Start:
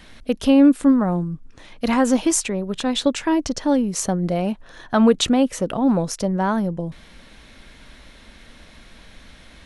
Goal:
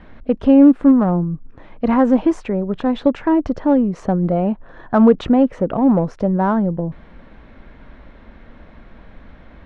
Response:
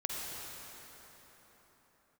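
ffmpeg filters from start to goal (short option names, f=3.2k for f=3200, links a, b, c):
-filter_complex "[0:a]lowpass=1.3k,asplit=2[a][b];[b]asoftclip=type=tanh:threshold=-21dB,volume=-11.5dB[c];[a][c]amix=inputs=2:normalize=0,volume=3dB"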